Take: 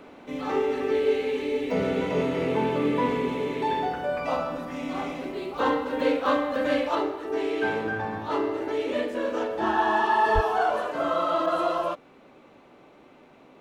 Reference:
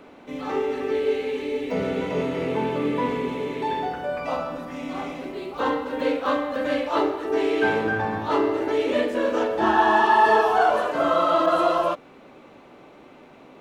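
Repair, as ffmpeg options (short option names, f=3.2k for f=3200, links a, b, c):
-filter_complex "[0:a]asplit=3[a][b][c];[a]afade=t=out:st=10.34:d=0.02[d];[b]highpass=f=140:w=0.5412,highpass=f=140:w=1.3066,afade=t=in:st=10.34:d=0.02,afade=t=out:st=10.46:d=0.02[e];[c]afade=t=in:st=10.46:d=0.02[f];[d][e][f]amix=inputs=3:normalize=0,asetnsamples=n=441:p=0,asendcmd='6.95 volume volume 5dB',volume=0dB"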